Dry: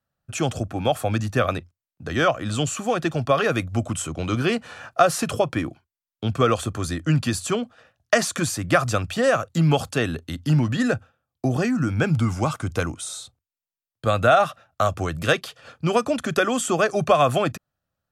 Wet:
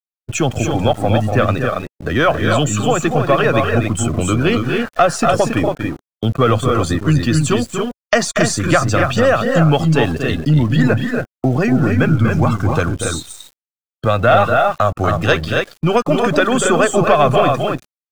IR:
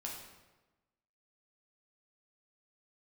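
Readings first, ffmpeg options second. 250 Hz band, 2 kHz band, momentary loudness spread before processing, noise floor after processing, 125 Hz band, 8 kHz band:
+8.0 dB, +7.0 dB, 9 LU, below −85 dBFS, +8.5 dB, +5.5 dB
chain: -filter_complex "[0:a]aeval=exprs='if(lt(val(0),0),0.708*val(0),val(0))':channel_layout=same,asplit=2[link_01][link_02];[link_02]acompressor=threshold=-32dB:ratio=6,volume=3dB[link_03];[link_01][link_03]amix=inputs=2:normalize=0,aecho=1:1:239.1|277:0.398|0.562,acontrast=79,lowpass=9400,aeval=exprs='val(0)*gte(abs(val(0)),0.0668)':channel_layout=same,afftdn=noise_reduction=12:noise_floor=-26,volume=-1dB"

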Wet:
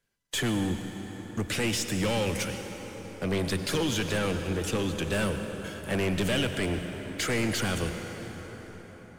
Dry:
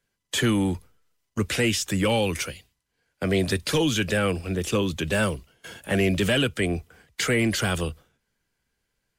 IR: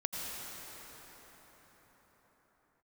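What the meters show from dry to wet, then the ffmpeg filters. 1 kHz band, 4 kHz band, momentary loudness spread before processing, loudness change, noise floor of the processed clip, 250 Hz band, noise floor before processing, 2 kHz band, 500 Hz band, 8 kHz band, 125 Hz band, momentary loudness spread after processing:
−3.5 dB, −4.0 dB, 11 LU, −5.0 dB, −48 dBFS, −4.5 dB, −78 dBFS, −5.0 dB, −4.5 dB, −3.0 dB, −4.0 dB, 12 LU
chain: -filter_complex "[0:a]aeval=exprs='(tanh(12.6*val(0)+0.25)-tanh(0.25))/12.6':channel_layout=same,asplit=2[link_01][link_02];[1:a]atrim=start_sample=2205[link_03];[link_02][link_03]afir=irnorm=-1:irlink=0,volume=-5.5dB[link_04];[link_01][link_04]amix=inputs=2:normalize=0,volume=-5dB"

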